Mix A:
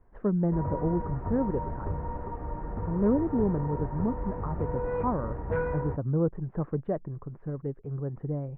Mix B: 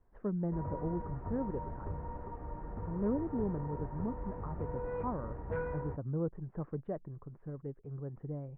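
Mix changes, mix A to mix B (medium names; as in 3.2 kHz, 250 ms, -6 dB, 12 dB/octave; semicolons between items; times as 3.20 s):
speech -8.5 dB; background -7.5 dB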